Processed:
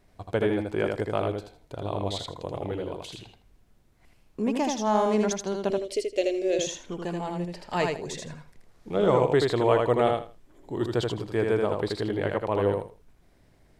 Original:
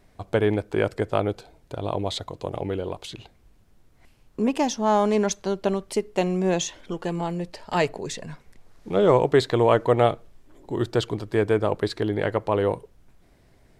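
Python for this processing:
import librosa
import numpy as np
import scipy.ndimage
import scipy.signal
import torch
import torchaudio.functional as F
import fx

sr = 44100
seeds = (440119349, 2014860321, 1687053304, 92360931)

p1 = fx.curve_eq(x, sr, hz=(100.0, 180.0, 280.0, 410.0, 590.0, 890.0, 2200.0, 4600.0, 12000.0), db=(0, -28, 1, 1, 5, -25, 1, 4, -4), at=(5.7, 6.59))
p2 = p1 + fx.echo_feedback(p1, sr, ms=80, feedback_pct=20, wet_db=-3.5, dry=0)
y = F.gain(torch.from_numpy(p2), -4.5).numpy()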